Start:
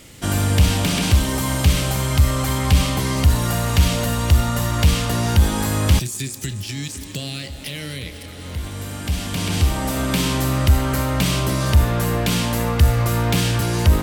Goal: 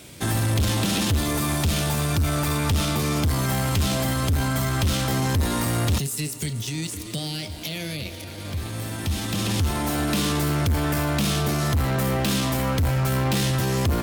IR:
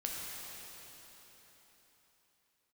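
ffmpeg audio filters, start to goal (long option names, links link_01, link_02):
-af "highpass=58,asetrate=49501,aresample=44100,atempo=0.890899,asoftclip=type=tanh:threshold=-17.5dB"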